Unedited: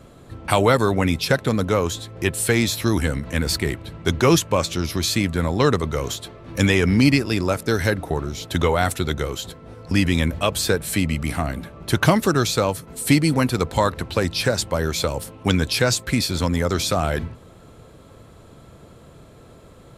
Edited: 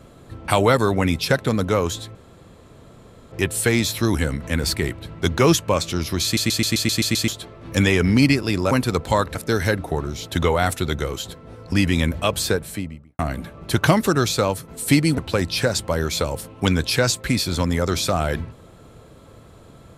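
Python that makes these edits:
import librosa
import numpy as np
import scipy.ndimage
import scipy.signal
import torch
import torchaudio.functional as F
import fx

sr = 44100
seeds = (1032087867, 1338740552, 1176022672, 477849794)

y = fx.studio_fade_out(x, sr, start_s=10.57, length_s=0.81)
y = fx.edit(y, sr, fx.insert_room_tone(at_s=2.15, length_s=1.17),
    fx.stutter_over(start_s=5.07, slice_s=0.13, count=8),
    fx.move(start_s=13.37, length_s=0.64, to_s=7.54), tone=tone)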